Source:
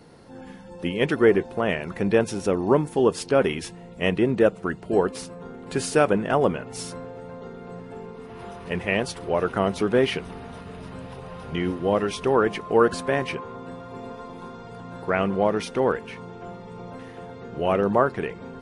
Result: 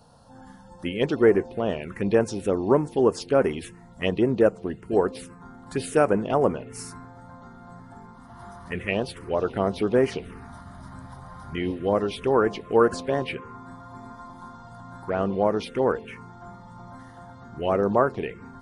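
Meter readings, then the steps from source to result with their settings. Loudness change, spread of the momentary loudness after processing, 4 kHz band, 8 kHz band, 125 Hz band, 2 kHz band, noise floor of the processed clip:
-1.0 dB, 22 LU, -4.0 dB, -4.5 dB, -1.5 dB, -4.5 dB, -47 dBFS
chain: envelope phaser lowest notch 340 Hz, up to 3600 Hz, full sweep at -16.5 dBFS; bell 170 Hz -5.5 dB 0.28 oct

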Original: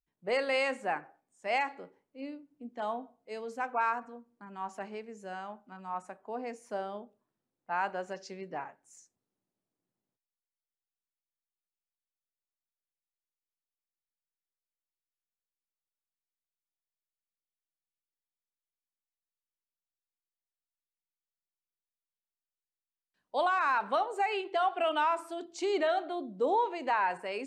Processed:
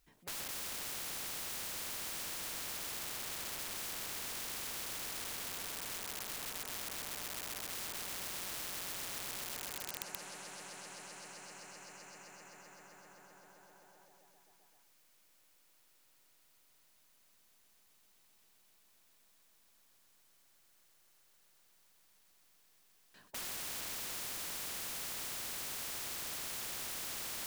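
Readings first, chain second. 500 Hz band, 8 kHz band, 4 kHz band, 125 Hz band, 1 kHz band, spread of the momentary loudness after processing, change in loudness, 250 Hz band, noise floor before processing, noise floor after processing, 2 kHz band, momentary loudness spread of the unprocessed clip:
-19.5 dB, +16.5 dB, +3.0 dB, +0.5 dB, -18.0 dB, 12 LU, -7.0 dB, -13.0 dB, under -85 dBFS, -68 dBFS, -9.0 dB, 16 LU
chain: swelling echo 0.129 s, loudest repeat 5, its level -4 dB; wrapped overs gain 30.5 dB; spectral compressor 4:1; gain +15 dB

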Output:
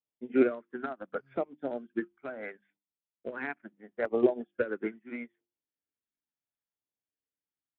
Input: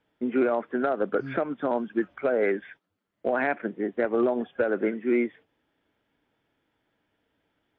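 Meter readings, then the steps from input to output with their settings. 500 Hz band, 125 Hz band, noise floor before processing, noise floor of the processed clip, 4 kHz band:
-6.5 dB, -9.0 dB, -79 dBFS, under -85 dBFS, n/a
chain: notches 50/100/150/200/250/300/350 Hz; LFO notch saw down 0.74 Hz 270–1700 Hz; upward expander 2.5:1, over -41 dBFS; gain +3 dB

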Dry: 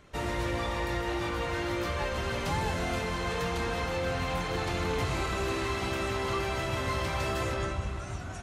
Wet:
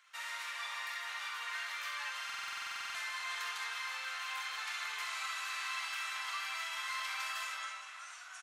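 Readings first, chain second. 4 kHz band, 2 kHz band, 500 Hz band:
-2.5 dB, -2.5 dB, -30.0 dB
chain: HPF 1200 Hz 24 dB/oct; tapped delay 45/65 ms -8/-7 dB; stuck buffer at 2.25, samples 2048, times 14; gain -3.5 dB

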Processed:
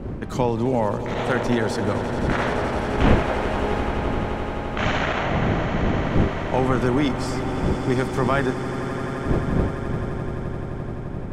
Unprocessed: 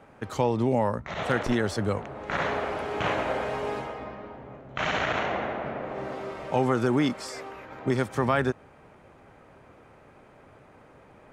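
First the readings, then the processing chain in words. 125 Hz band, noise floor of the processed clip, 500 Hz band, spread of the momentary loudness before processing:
+9.5 dB, -30 dBFS, +5.0 dB, 13 LU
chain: wind noise 230 Hz -30 dBFS; swelling echo 86 ms, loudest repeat 8, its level -15 dB; gain +2.5 dB

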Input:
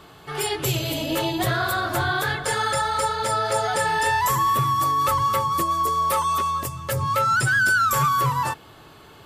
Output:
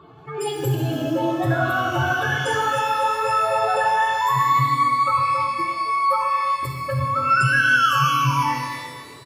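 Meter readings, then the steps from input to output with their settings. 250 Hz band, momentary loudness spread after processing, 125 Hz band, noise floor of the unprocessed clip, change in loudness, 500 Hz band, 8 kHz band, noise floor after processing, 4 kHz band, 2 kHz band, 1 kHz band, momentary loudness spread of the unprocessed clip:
+3.5 dB, 9 LU, +2.5 dB, -48 dBFS, +1.5 dB, +1.5 dB, -7.0 dB, -40 dBFS, -1.0 dB, +2.0 dB, +2.0 dB, 7 LU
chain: spectral contrast raised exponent 2.2; HPF 95 Hz; speakerphone echo 0.33 s, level -16 dB; shimmer reverb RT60 1.7 s, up +12 st, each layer -8 dB, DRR 2 dB

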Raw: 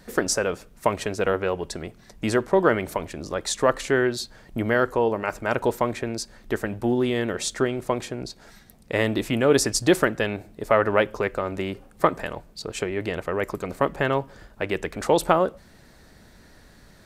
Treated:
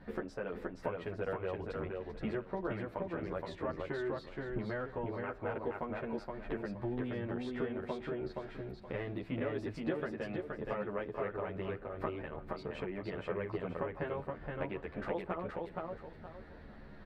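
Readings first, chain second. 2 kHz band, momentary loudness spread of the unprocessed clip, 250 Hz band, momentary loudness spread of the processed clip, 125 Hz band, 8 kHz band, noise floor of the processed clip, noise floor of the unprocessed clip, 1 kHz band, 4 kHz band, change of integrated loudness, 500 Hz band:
-16.5 dB, 13 LU, -13.0 dB, 5 LU, -11.0 dB, under -35 dB, -52 dBFS, -52 dBFS, -16.0 dB, -22.5 dB, -15.0 dB, -14.5 dB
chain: compressor 4:1, threshold -35 dBFS, peak gain reduction 18.5 dB; air absorption 440 m; on a send: feedback echo 0.472 s, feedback 28%, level -3 dB; on the sum: endless flanger 10.9 ms -0.48 Hz; gain +1.5 dB

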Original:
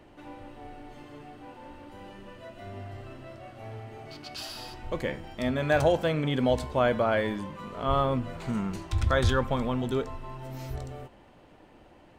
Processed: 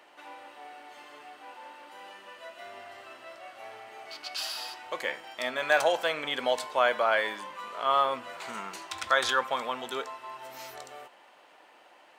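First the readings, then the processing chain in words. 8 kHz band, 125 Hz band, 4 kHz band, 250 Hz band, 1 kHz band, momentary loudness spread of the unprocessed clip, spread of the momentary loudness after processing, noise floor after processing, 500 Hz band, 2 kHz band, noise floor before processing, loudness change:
+5.0 dB, -27.5 dB, +5.0 dB, -15.0 dB, +3.0 dB, 21 LU, 22 LU, -57 dBFS, -2.5 dB, +4.5 dB, -55 dBFS, -0.5 dB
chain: HPF 830 Hz 12 dB/oct; gain +5 dB

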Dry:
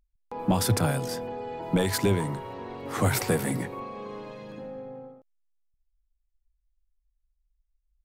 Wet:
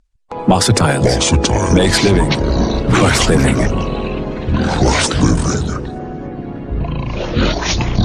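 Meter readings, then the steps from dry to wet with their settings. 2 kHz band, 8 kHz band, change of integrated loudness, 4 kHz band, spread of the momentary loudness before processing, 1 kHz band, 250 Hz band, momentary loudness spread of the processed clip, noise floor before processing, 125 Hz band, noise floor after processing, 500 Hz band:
+17.0 dB, +16.0 dB, +13.5 dB, +19.5 dB, 16 LU, +15.0 dB, +16.0 dB, 13 LU, -75 dBFS, +15.5 dB, -28 dBFS, +14.5 dB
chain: bin magnitudes rounded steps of 15 dB; echoes that change speed 0.292 s, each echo -7 st, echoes 3; harmonic-percussive split harmonic -8 dB; LPF 8700 Hz 24 dB/oct; maximiser +18.5 dB; gain -1 dB

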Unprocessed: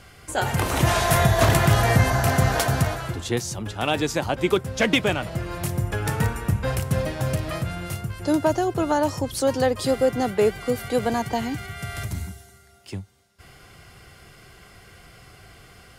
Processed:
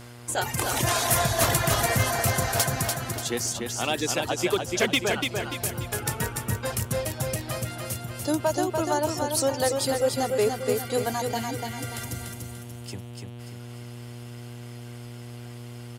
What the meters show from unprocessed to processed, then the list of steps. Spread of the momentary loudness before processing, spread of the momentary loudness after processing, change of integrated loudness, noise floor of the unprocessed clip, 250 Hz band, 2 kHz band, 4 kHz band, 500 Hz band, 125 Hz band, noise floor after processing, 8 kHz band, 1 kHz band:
12 LU, 18 LU, -3.0 dB, -50 dBFS, -5.5 dB, -3.0 dB, +0.5 dB, -3.0 dB, -7.0 dB, -40 dBFS, +4.5 dB, -3.0 dB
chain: reverb removal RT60 1.1 s; tone controls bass -6 dB, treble +8 dB; buzz 120 Hz, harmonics 38, -42 dBFS -6 dB/oct; hard clip -12 dBFS, distortion -24 dB; feedback echo 0.292 s, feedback 43%, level -4.5 dB; gain -3 dB

